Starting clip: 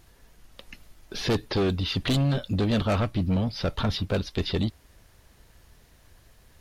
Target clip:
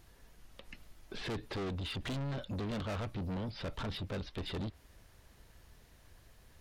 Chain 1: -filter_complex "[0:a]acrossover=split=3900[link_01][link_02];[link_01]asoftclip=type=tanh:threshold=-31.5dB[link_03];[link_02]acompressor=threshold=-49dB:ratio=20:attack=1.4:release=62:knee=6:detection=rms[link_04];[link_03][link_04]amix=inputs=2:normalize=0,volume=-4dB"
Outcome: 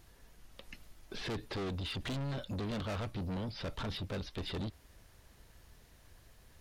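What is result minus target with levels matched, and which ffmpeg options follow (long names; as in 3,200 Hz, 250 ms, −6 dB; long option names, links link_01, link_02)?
downward compressor: peak gain reduction −10.5 dB
-filter_complex "[0:a]acrossover=split=3900[link_01][link_02];[link_01]asoftclip=type=tanh:threshold=-31.5dB[link_03];[link_02]acompressor=threshold=-60dB:ratio=20:attack=1.4:release=62:knee=6:detection=rms[link_04];[link_03][link_04]amix=inputs=2:normalize=0,volume=-4dB"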